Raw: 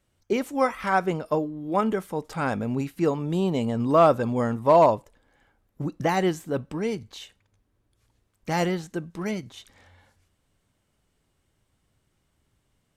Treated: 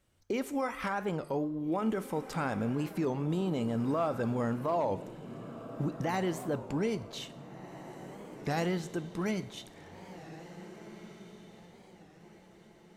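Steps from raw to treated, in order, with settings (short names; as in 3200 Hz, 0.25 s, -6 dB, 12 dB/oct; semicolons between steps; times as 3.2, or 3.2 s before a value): in parallel at +1 dB: compressor, threshold -29 dBFS, peak gain reduction 15 dB; on the sum: limiter -16 dBFS, peak gain reduction 9.5 dB; diffused feedback echo 1.76 s, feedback 40%, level -13.5 dB; plate-style reverb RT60 1.1 s, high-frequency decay 0.8×, DRR 14.5 dB; record warp 33 1/3 rpm, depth 160 cents; gain -7.5 dB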